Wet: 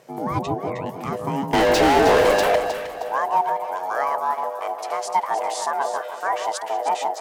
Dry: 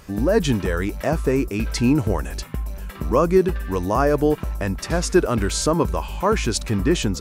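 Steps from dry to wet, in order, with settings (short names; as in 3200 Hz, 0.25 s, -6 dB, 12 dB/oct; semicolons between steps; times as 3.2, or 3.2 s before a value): 0.41–0.86 formant sharpening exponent 1.5; ring modulator 550 Hz; high-pass sweep 140 Hz -> 710 Hz, 0.95–2.72; 1.53–2.56 overdrive pedal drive 39 dB, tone 3100 Hz, clips at -5.5 dBFS; on a send: echo with dull and thin repeats by turns 0.156 s, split 1100 Hz, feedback 59%, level -4.5 dB; on the sum: gain -5 dB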